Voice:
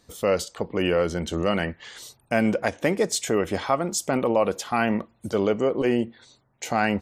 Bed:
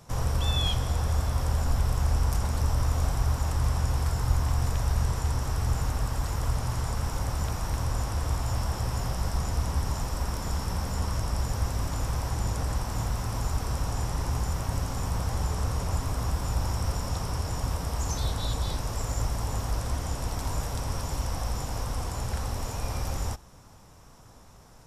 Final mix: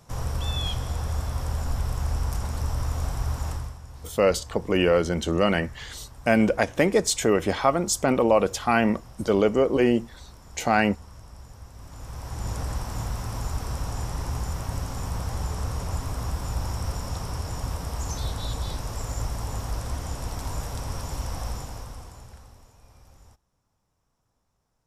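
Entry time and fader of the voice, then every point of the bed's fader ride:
3.95 s, +2.0 dB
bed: 3.52 s -2 dB
3.79 s -16.5 dB
11.71 s -16.5 dB
12.52 s -1 dB
21.5 s -1 dB
22.74 s -22.5 dB

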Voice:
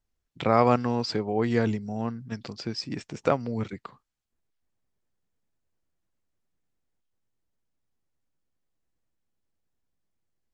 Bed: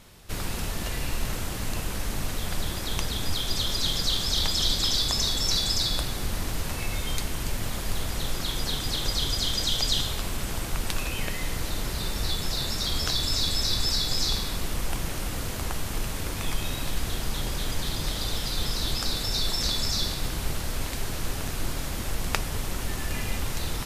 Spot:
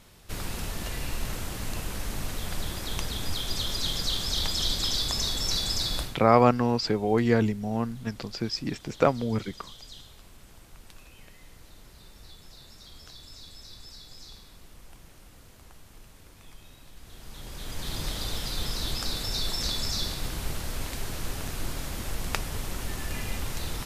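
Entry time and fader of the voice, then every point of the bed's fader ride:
5.75 s, +2.0 dB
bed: 6.02 s -3 dB
6.26 s -21 dB
16.94 s -21 dB
17.96 s -3 dB

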